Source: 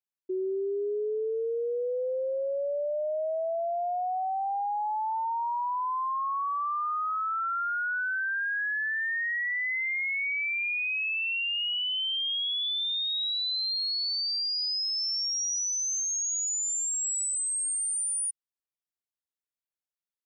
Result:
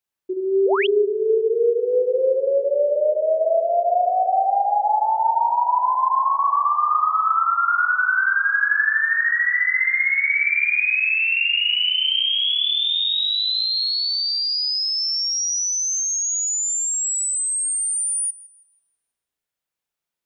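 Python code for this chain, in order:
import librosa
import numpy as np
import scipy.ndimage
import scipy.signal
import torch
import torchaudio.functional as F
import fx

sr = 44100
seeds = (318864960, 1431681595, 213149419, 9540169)

y = fx.echo_filtered(x, sr, ms=162, feedback_pct=83, hz=4600.0, wet_db=-12.0)
y = fx.rev_spring(y, sr, rt60_s=1.2, pass_ms=(36,), chirp_ms=45, drr_db=0.0)
y = fx.spec_paint(y, sr, seeds[0], shape='rise', start_s=0.65, length_s=0.22, low_hz=370.0, high_hz=3500.0, level_db=-30.0)
y = F.gain(torch.from_numpy(y), 7.0).numpy()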